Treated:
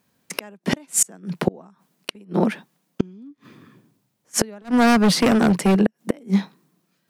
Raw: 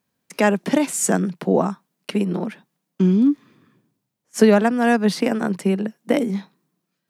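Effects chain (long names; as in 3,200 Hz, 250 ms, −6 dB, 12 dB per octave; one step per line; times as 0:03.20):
0:02.42–0:03.31: low-shelf EQ 73 Hz −10.5 dB
0:04.62–0:05.81: gain into a clipping stage and back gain 21 dB
gate with flip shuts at −13 dBFS, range −33 dB
level +8 dB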